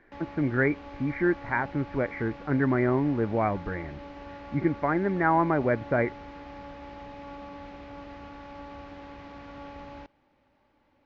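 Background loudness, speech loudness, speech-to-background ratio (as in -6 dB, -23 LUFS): -43.5 LUFS, -27.5 LUFS, 16.0 dB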